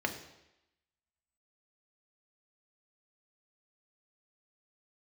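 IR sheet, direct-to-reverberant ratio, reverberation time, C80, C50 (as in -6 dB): 3.5 dB, 0.90 s, 12.0 dB, 10.0 dB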